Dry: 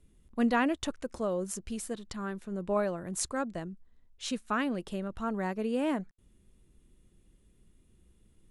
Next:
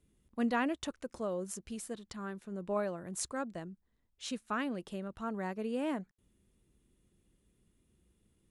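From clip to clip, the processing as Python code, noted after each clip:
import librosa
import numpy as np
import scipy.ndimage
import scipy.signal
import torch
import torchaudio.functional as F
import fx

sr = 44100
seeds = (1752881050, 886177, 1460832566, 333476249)

y = fx.highpass(x, sr, hz=74.0, slope=6)
y = F.gain(torch.from_numpy(y), -4.5).numpy()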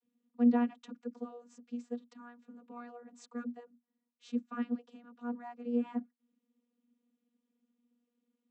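y = fx.vocoder(x, sr, bands=32, carrier='saw', carrier_hz=240.0)
y = F.gain(torch.from_numpy(y), 2.0).numpy()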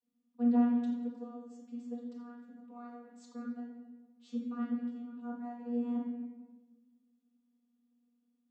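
y = fx.room_shoebox(x, sr, seeds[0], volume_m3=840.0, walls='mixed', distance_m=2.0)
y = F.gain(torch.from_numpy(y), -8.0).numpy()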